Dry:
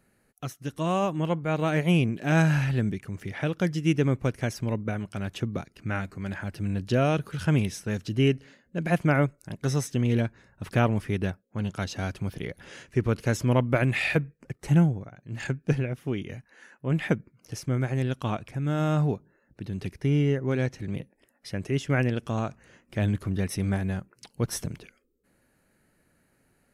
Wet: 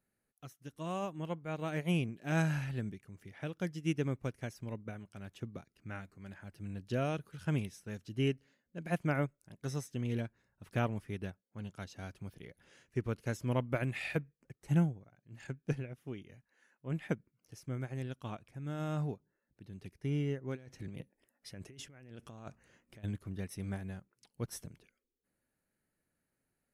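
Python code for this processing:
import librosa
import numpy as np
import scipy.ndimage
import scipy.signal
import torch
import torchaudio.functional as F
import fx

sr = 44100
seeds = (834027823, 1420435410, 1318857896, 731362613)

y = fx.over_compress(x, sr, threshold_db=-34.0, ratio=-1.0, at=(20.55, 23.03), fade=0.02)
y = fx.high_shelf(y, sr, hz=8800.0, db=6.0)
y = fx.upward_expand(y, sr, threshold_db=-36.0, expansion=1.5)
y = F.gain(torch.from_numpy(y), -8.0).numpy()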